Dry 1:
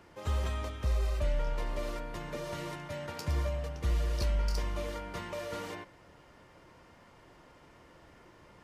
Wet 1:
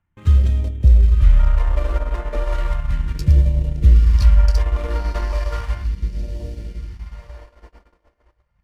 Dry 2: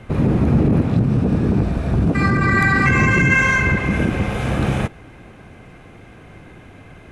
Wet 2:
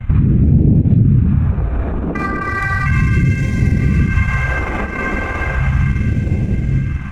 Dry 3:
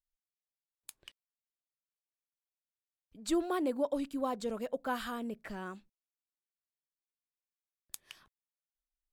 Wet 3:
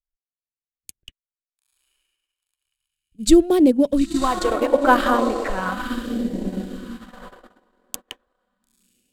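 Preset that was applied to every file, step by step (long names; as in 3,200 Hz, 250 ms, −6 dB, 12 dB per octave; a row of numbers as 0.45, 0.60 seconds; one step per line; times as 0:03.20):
adaptive Wiener filter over 9 samples
feedback delay with all-pass diffusion 946 ms, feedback 41%, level −5.5 dB
transient designer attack +1 dB, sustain −8 dB
downward compressor, threshold −19 dBFS
brickwall limiter −19.5 dBFS
dynamic equaliser 1,200 Hz, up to +4 dB, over −47 dBFS, Q 1.1
noise gate −50 dBFS, range −25 dB
low-shelf EQ 260 Hz +12 dB
all-pass phaser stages 2, 0.35 Hz, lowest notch 110–1,200 Hz
normalise the peak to −2 dBFS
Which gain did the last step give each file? +6.5, +7.5, +15.5 decibels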